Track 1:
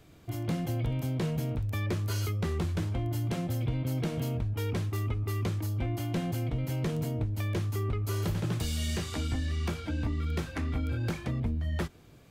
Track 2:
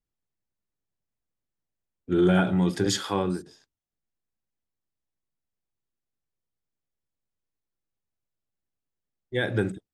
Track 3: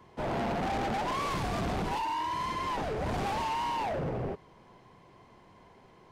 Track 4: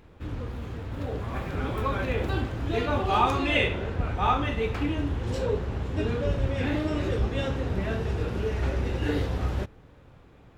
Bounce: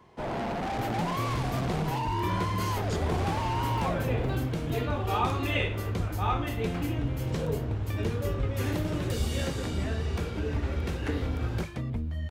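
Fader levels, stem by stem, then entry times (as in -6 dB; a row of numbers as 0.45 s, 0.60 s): -1.5 dB, -15.5 dB, -0.5 dB, -5.5 dB; 0.50 s, 0.00 s, 0.00 s, 2.00 s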